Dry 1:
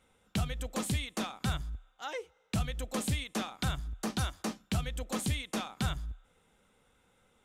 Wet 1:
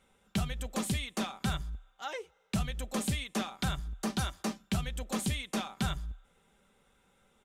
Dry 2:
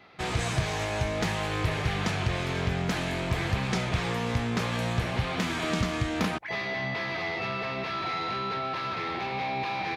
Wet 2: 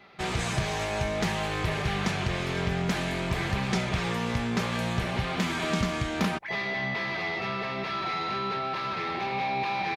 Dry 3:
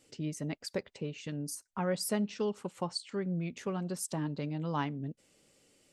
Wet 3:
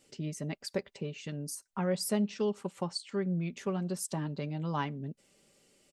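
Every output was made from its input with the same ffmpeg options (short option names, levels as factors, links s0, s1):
-af "aecho=1:1:5.1:0.34"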